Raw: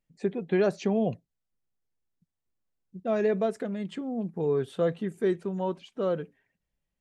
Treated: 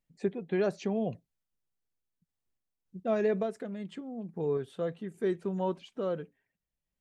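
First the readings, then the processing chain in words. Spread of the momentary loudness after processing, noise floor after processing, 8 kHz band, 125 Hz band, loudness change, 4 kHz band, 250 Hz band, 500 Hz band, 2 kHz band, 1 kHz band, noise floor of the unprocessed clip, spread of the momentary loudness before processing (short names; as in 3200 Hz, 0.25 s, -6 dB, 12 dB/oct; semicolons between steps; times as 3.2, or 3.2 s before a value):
11 LU, under -85 dBFS, n/a, -4.5 dB, -4.0 dB, -4.5 dB, -4.5 dB, -4.0 dB, -4.0 dB, -3.5 dB, -84 dBFS, 8 LU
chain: random-step tremolo; gain -1 dB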